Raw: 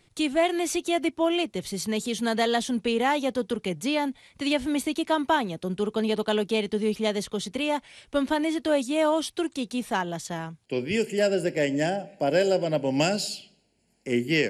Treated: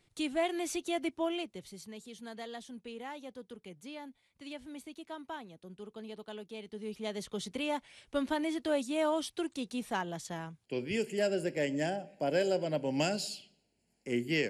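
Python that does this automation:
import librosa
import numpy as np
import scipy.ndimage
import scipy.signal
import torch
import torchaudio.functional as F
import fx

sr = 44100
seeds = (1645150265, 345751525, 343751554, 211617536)

y = fx.gain(x, sr, db=fx.line((1.21, -8.5), (1.93, -19.5), (6.55, -19.5), (7.39, -7.5)))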